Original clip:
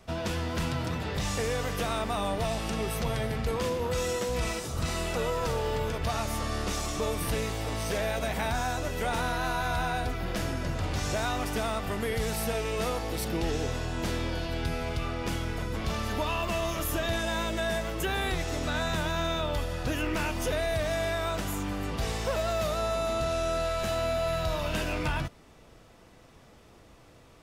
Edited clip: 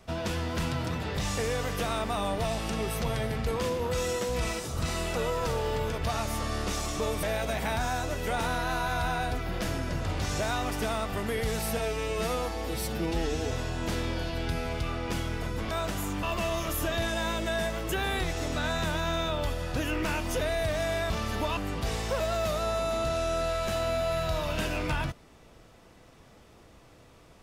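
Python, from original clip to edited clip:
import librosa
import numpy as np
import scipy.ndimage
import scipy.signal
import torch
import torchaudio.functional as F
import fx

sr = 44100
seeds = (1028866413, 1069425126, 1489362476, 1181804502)

y = fx.edit(x, sr, fx.cut(start_s=7.23, length_s=0.74),
    fx.stretch_span(start_s=12.51, length_s=1.16, factor=1.5),
    fx.swap(start_s=15.87, length_s=0.47, other_s=21.21, other_length_s=0.52), tone=tone)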